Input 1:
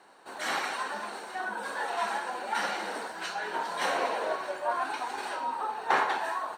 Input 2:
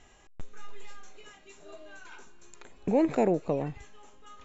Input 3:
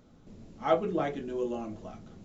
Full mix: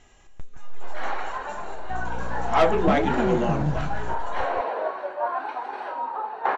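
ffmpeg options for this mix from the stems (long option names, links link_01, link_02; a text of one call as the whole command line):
ffmpeg -i stem1.wav -i stem2.wav -i stem3.wav -filter_complex "[0:a]lowpass=3200,equalizer=frequency=660:width=0.51:gain=10.5,adelay=550,volume=-10dB[link_01];[1:a]acompressor=threshold=-47dB:ratio=1.5,asubboost=boost=10.5:cutoff=150,volume=1.5dB,asplit=2[link_02][link_03];[link_03]volume=-7.5dB[link_04];[2:a]asplit=2[link_05][link_06];[link_06]highpass=frequency=720:poles=1,volume=20dB,asoftclip=type=tanh:threshold=-12dB[link_07];[link_05][link_07]amix=inputs=2:normalize=0,lowpass=frequency=3900:poles=1,volume=-6dB,aeval=exprs='val(0)+0.0158*(sin(2*PI*60*n/s)+sin(2*PI*2*60*n/s)/2+sin(2*PI*3*60*n/s)/3+sin(2*PI*4*60*n/s)/4+sin(2*PI*5*60*n/s)/5)':channel_layout=same,adelay=1900,volume=-2.5dB[link_08];[link_04]aecho=0:1:169:1[link_09];[link_01][link_02][link_08][link_09]amix=inputs=4:normalize=0,dynaudnorm=framelen=240:gausssize=7:maxgain=4dB" out.wav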